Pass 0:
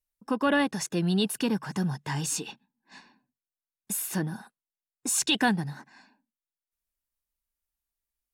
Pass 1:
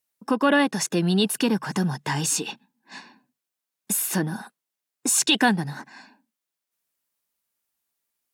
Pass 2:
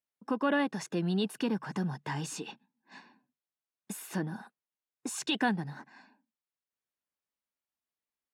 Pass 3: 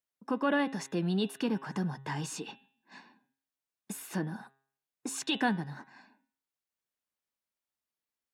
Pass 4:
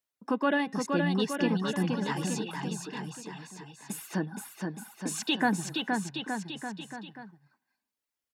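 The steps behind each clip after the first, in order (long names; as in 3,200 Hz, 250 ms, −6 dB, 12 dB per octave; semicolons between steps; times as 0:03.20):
high-pass filter 160 Hz 12 dB per octave; in parallel at −1 dB: downward compressor, threshold −35 dBFS, peak gain reduction 15.5 dB; on the sum: level +3.5 dB
low-pass filter 2,600 Hz 6 dB per octave; level −8.5 dB
hum removal 135.1 Hz, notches 30
reverb reduction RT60 1.5 s; bouncing-ball delay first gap 470 ms, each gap 0.85×, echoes 5; level +3 dB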